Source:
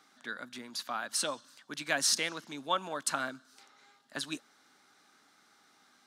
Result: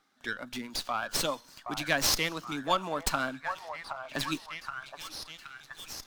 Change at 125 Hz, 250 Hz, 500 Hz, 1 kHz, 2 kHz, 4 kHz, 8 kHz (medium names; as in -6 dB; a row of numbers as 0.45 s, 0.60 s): +10.0 dB, +6.0 dB, +4.5 dB, +4.5 dB, +3.5 dB, +2.5 dB, -0.5 dB